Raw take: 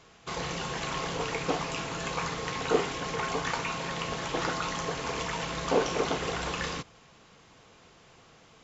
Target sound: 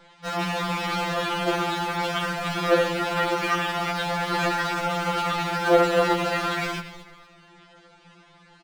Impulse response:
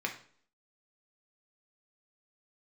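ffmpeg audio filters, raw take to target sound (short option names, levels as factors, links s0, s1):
-filter_complex "[0:a]lowpass=3100,asplit=2[s0][s1];[s1]acrusher=bits=5:mix=0:aa=0.000001,volume=0.299[s2];[s0][s2]amix=inputs=2:normalize=0,asplit=4[s3][s4][s5][s6];[s4]adelay=236,afreqshift=-81,volume=0.188[s7];[s5]adelay=472,afreqshift=-162,volume=0.0582[s8];[s6]adelay=708,afreqshift=-243,volume=0.0182[s9];[s3][s7][s8][s9]amix=inputs=4:normalize=0,asetrate=57191,aresample=44100,atempo=0.771105,asplit=2[s10][s11];[1:a]atrim=start_sample=2205,adelay=84[s12];[s11][s12]afir=irnorm=-1:irlink=0,volume=0.15[s13];[s10][s13]amix=inputs=2:normalize=0,afftfilt=real='re*2.83*eq(mod(b,8),0)':imag='im*2.83*eq(mod(b,8),0)':win_size=2048:overlap=0.75,volume=2.11"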